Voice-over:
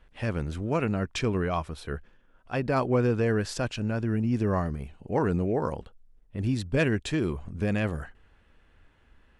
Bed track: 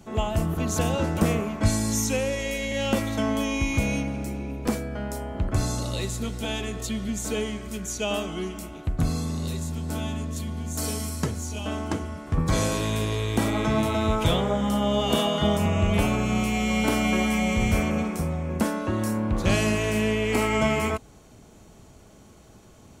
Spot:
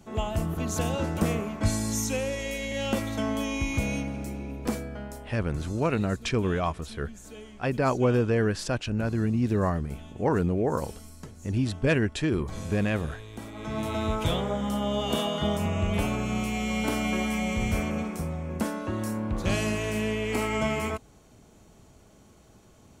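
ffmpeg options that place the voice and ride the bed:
-filter_complex "[0:a]adelay=5100,volume=1dB[a];[1:a]volume=8.5dB,afade=t=out:st=4.79:d=0.63:silence=0.223872,afade=t=in:st=13.54:d=0.43:silence=0.251189[b];[a][b]amix=inputs=2:normalize=0"

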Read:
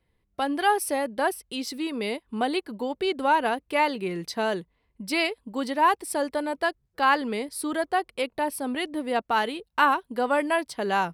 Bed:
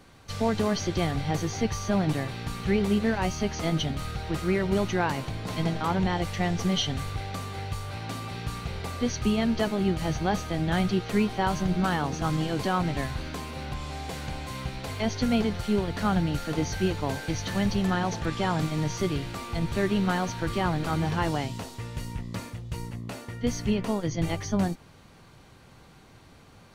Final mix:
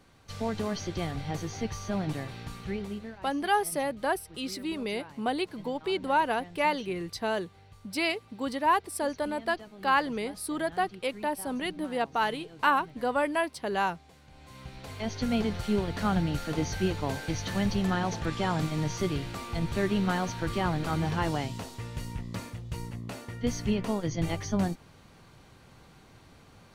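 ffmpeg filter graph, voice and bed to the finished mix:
-filter_complex "[0:a]adelay=2850,volume=-3.5dB[a];[1:a]volume=13dB,afade=t=out:st=2.4:d=0.8:silence=0.177828,afade=t=in:st=14.29:d=1.27:silence=0.112202[b];[a][b]amix=inputs=2:normalize=0"

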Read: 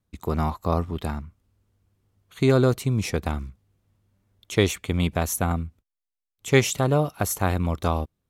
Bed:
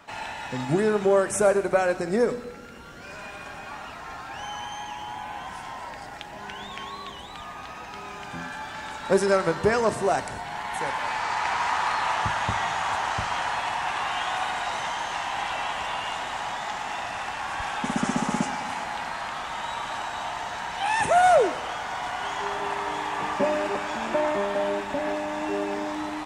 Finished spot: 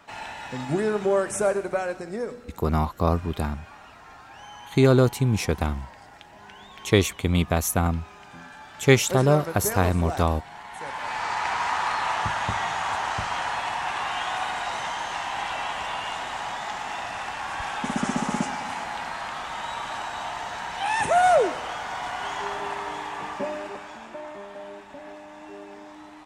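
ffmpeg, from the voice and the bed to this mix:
-filter_complex "[0:a]adelay=2350,volume=1.5dB[a];[1:a]volume=6dB,afade=t=out:st=1.3:d=0.9:silence=0.473151,afade=t=in:st=10.76:d=0.48:silence=0.398107,afade=t=out:st=22.36:d=1.77:silence=0.223872[b];[a][b]amix=inputs=2:normalize=0"

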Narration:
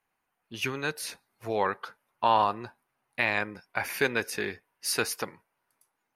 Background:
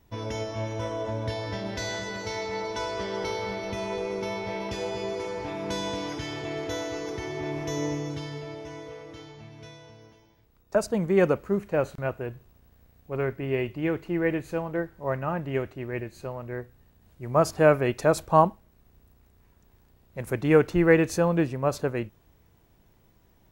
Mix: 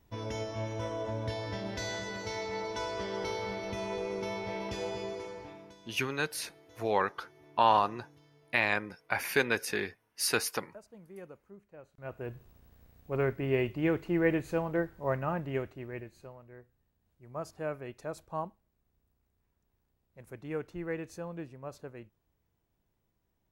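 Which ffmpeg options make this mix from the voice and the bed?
-filter_complex "[0:a]adelay=5350,volume=-1dB[a];[1:a]volume=20.5dB,afade=t=out:st=4.88:d=0.87:silence=0.0794328,afade=t=in:st=11.95:d=0.51:silence=0.0562341,afade=t=out:st=14.91:d=1.54:silence=0.158489[b];[a][b]amix=inputs=2:normalize=0"

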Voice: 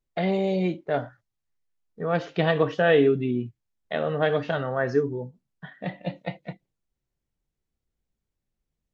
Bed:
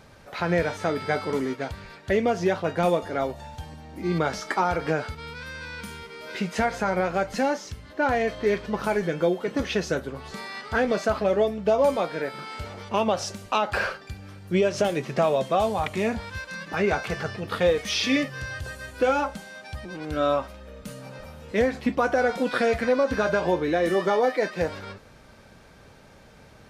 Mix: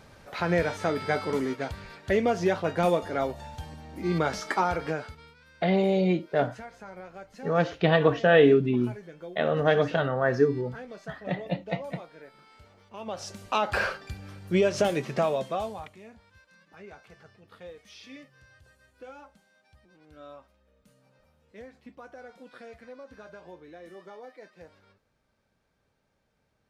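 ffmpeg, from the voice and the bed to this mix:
-filter_complex "[0:a]adelay=5450,volume=1dB[a];[1:a]volume=16.5dB,afade=t=out:st=4.59:d=0.77:silence=0.133352,afade=t=in:st=12.97:d=0.72:silence=0.125893,afade=t=out:st=14.95:d=1.03:silence=0.0749894[b];[a][b]amix=inputs=2:normalize=0"

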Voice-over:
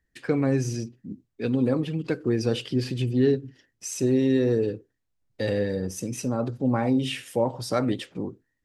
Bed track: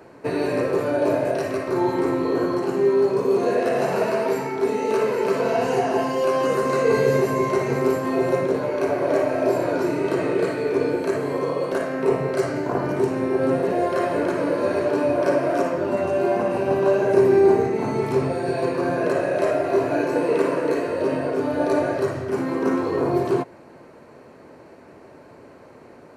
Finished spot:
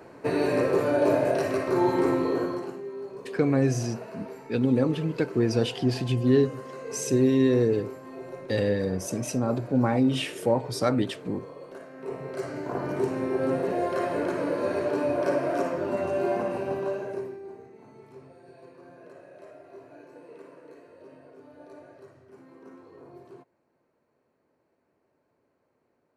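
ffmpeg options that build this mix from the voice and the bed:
-filter_complex "[0:a]adelay=3100,volume=0.5dB[a];[1:a]volume=12dB,afade=t=out:st=2.11:d=0.71:silence=0.133352,afade=t=in:st=11.94:d=1.09:silence=0.211349,afade=t=out:st=16.33:d=1.05:silence=0.0841395[b];[a][b]amix=inputs=2:normalize=0"

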